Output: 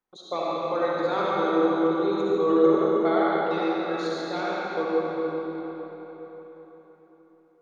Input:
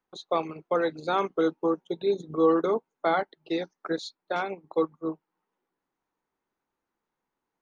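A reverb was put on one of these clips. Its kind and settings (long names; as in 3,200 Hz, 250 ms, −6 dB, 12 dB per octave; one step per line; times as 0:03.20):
comb and all-pass reverb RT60 4.3 s, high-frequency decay 0.75×, pre-delay 30 ms, DRR −7 dB
level −4.5 dB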